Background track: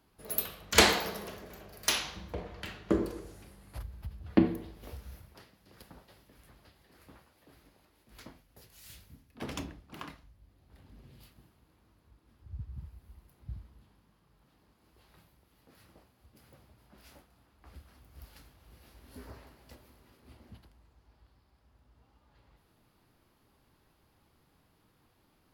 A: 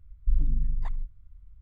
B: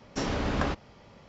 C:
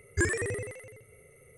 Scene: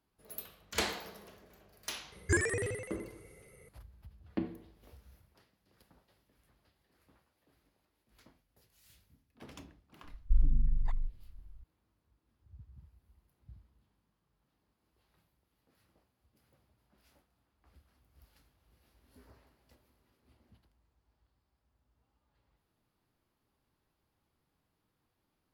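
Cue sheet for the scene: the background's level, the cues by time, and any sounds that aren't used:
background track -12 dB
2.12 s: add C -2 dB
10.03 s: add A -2.5 dB
not used: B

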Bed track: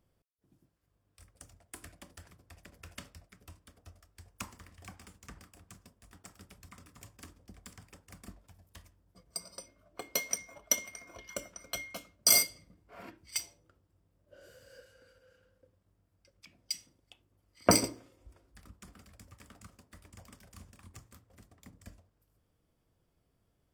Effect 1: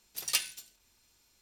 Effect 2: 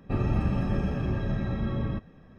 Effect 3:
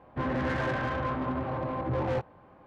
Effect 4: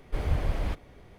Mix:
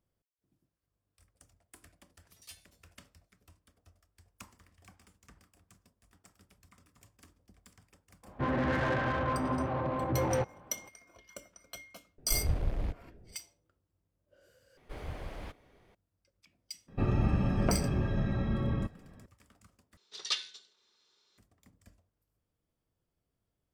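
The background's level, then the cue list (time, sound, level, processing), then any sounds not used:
bed track -8.5 dB
2.14 s: add 1 -14 dB + feedback comb 220 Hz, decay 0.15 s, mix 90%
8.23 s: add 3 -0.5 dB
12.18 s: add 4 -3.5 dB + local Wiener filter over 41 samples
14.77 s: replace with 4 -8 dB + bass shelf 180 Hz -8 dB
16.88 s: add 2 -2 dB
19.97 s: replace with 1 -2.5 dB + cabinet simulation 260–5700 Hz, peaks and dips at 270 Hz -8 dB, 410 Hz +8 dB, 700 Hz -6 dB, 1.2 kHz +4 dB, 2.5 kHz -6 dB, 3.7 kHz +9 dB

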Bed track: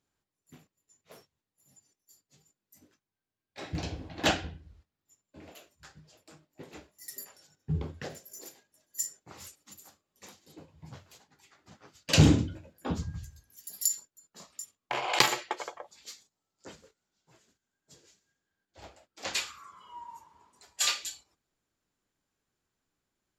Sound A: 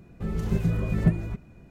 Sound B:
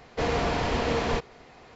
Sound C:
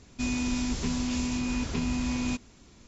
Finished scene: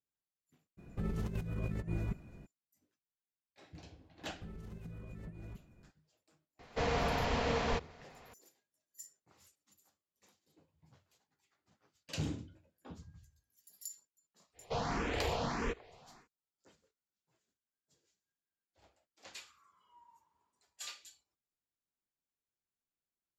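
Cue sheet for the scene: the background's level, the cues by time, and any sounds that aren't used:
bed track -18 dB
0.77 s: add A -7.5 dB, fades 0.02 s + compressor with a negative ratio -30 dBFS
4.21 s: add A -12 dB + compression 16:1, threshold -31 dBFS
6.59 s: add B -6 dB + peaking EQ 340 Hz -14 dB 0.22 oct
14.53 s: add B -6 dB, fades 0.10 s + barber-pole phaser +1.6 Hz
not used: C

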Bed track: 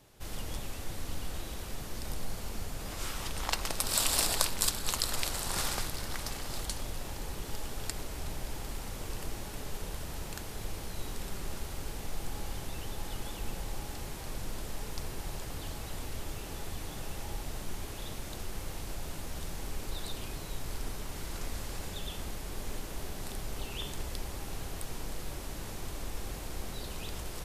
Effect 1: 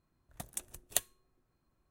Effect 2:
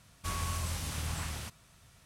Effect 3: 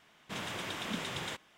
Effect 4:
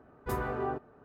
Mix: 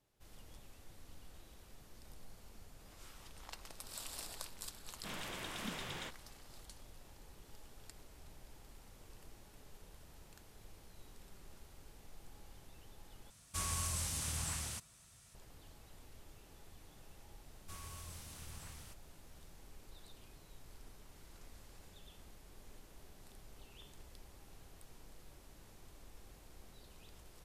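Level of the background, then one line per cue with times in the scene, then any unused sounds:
bed track -18.5 dB
4.74 s: add 3 -6.5 dB
13.30 s: replace with 2 -6 dB + peaking EQ 8.5 kHz +10.5 dB 1.4 oct
17.44 s: add 2 -16.5 dB + treble shelf 6.1 kHz +7 dB
not used: 1, 4

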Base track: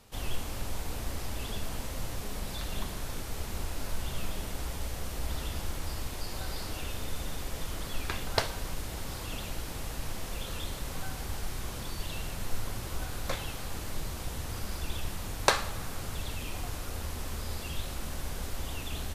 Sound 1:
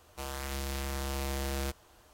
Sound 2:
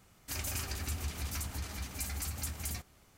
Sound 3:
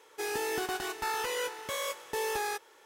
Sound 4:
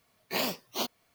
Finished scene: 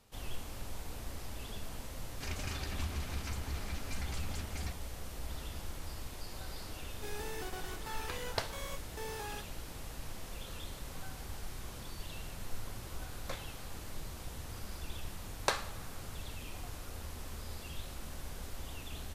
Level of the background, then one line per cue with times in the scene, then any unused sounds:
base track -7.5 dB
1.92 s: add 2 -1 dB + low-pass 4.7 kHz
6.84 s: add 3 -11 dB
not used: 1, 4

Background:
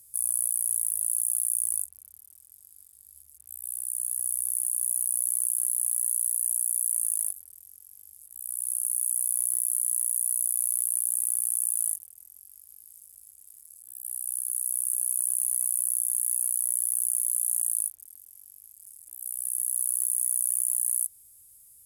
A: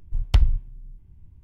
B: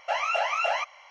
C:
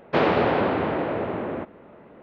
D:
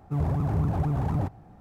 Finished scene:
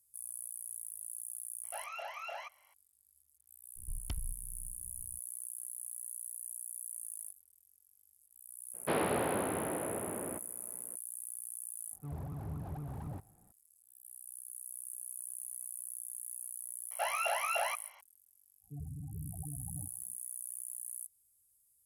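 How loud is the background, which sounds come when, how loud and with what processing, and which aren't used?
background -17 dB
1.64 s: add B -17 dB
3.76 s: add A -7 dB + compression, threshold -29 dBFS
8.74 s: add C -12 dB
11.92 s: add D -16 dB
16.91 s: add B -7.5 dB
18.60 s: add D -17.5 dB, fades 0.10 s + loudest bins only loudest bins 8

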